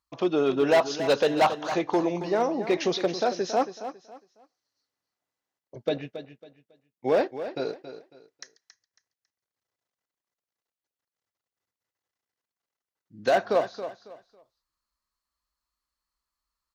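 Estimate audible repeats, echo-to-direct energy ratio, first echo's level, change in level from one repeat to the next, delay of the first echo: 3, −11.0 dB, −11.5 dB, −11.5 dB, 275 ms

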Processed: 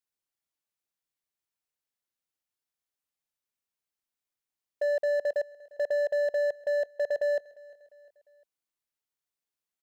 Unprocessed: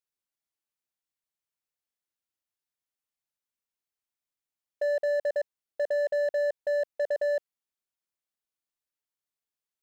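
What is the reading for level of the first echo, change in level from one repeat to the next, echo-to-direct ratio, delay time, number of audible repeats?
−23.0 dB, −6.0 dB, −22.0 dB, 351 ms, 2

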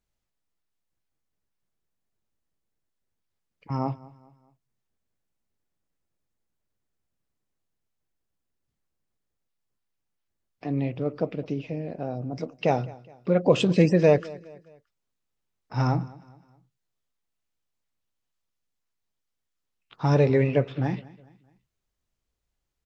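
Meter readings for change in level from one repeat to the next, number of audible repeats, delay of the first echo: −7.5 dB, 2, 208 ms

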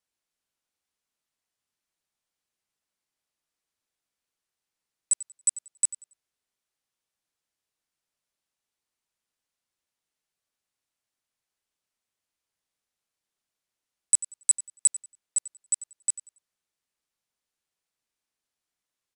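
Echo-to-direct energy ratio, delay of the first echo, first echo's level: −15.0 dB, 93 ms, −15.5 dB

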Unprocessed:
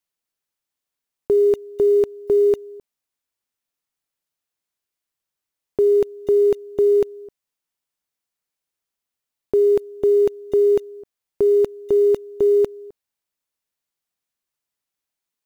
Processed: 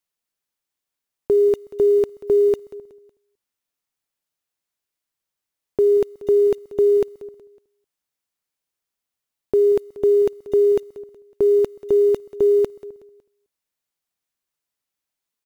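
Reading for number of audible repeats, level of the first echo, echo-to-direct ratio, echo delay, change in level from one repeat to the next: 3, −18.0 dB, −17.5 dB, 185 ms, −8.0 dB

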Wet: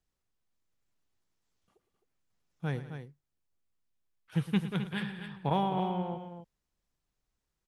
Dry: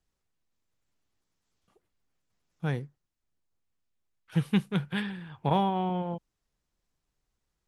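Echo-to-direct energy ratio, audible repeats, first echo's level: −8.0 dB, 3, −14.5 dB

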